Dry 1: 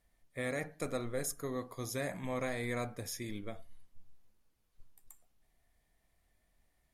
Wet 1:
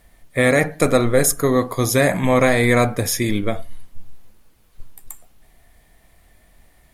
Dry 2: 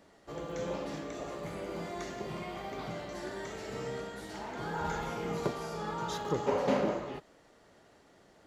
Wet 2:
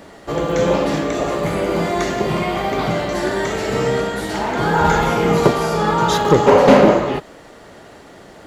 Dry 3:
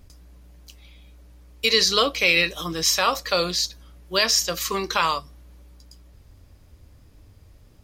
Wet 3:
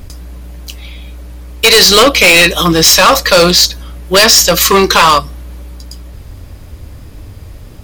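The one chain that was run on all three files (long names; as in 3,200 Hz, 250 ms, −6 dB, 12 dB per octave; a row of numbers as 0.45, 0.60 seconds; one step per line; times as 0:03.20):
parametric band 5,700 Hz −3 dB 0.79 octaves
gain into a clipping stage and back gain 23 dB
normalise the peak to −3 dBFS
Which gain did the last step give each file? +21.5, +20.0, +20.0 decibels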